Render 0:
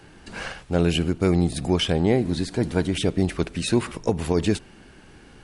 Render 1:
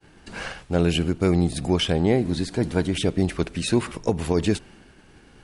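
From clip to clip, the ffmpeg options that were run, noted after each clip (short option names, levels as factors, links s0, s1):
-af "agate=range=0.0224:threshold=0.00631:ratio=3:detection=peak"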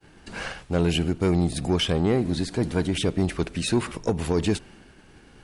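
-af "asoftclip=type=tanh:threshold=0.224"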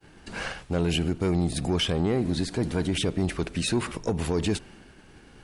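-af "alimiter=limit=0.133:level=0:latency=1:release=36"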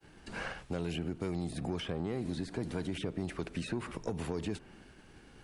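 -filter_complex "[0:a]acrossover=split=120|2400[s0][s1][s2];[s0]acompressor=threshold=0.00794:ratio=4[s3];[s1]acompressor=threshold=0.0398:ratio=4[s4];[s2]acompressor=threshold=0.00447:ratio=4[s5];[s3][s4][s5]amix=inputs=3:normalize=0,volume=0.562"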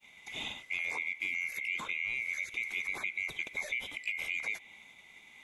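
-af "afftfilt=real='real(if(lt(b,920),b+92*(1-2*mod(floor(b/92),2)),b),0)':imag='imag(if(lt(b,920),b+92*(1-2*mod(floor(b/92),2)),b),0)':win_size=2048:overlap=0.75"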